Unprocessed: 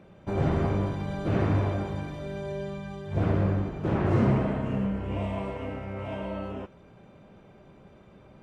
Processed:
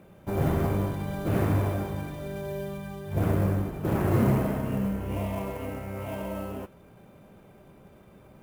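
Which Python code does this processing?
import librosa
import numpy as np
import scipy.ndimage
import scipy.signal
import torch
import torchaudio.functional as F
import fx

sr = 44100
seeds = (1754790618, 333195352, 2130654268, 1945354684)

y = fx.sample_hold(x, sr, seeds[0], rate_hz=13000.0, jitter_pct=20)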